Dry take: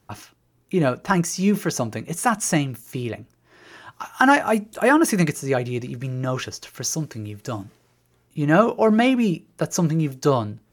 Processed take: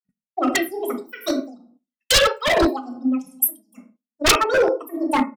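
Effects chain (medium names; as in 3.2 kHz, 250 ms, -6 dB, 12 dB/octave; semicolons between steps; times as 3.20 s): expander on every frequency bin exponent 2; doubling 15 ms -11 dB; low-pass that closes with the level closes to 1.2 kHz, closed at -17.5 dBFS; simulated room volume 3300 m³, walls furnished, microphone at 2.8 m; speed mistake 7.5 ips tape played at 15 ips; de-hum 206.9 Hz, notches 4; gate -46 dBFS, range -12 dB; tremolo triangle 2.4 Hz, depth 80%; wavefolder -19.5 dBFS; three bands expanded up and down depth 100%; trim +7 dB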